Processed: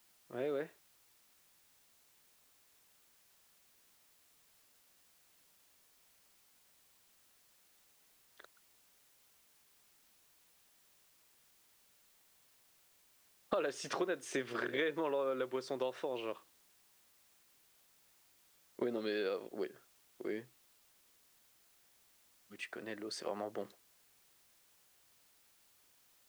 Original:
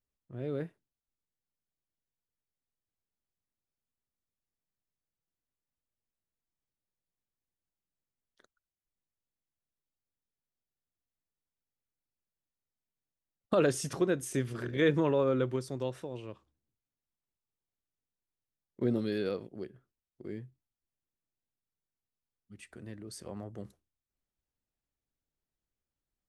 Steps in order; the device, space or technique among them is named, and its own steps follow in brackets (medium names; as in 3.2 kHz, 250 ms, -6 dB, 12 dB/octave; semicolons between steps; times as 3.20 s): baby monitor (band-pass 480–4400 Hz; compression, threshold -43 dBFS, peak gain reduction 17 dB; white noise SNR 24 dB); trim +9.5 dB